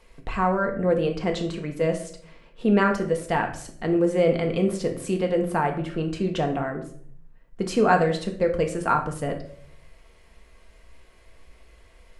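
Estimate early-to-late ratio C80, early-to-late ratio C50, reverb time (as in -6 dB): 13.5 dB, 10.0 dB, 0.60 s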